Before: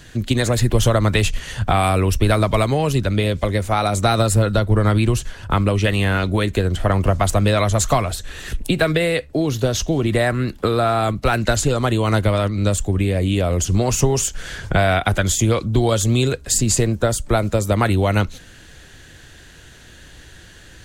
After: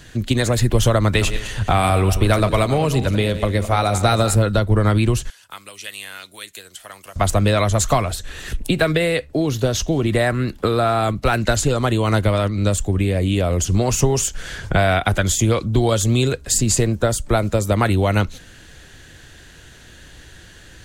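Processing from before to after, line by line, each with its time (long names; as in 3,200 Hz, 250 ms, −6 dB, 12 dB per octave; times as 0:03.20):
0:01.04–0:04.35: feedback delay that plays each chunk backwards 109 ms, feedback 49%, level −10.5 dB
0:05.30–0:07.16: first difference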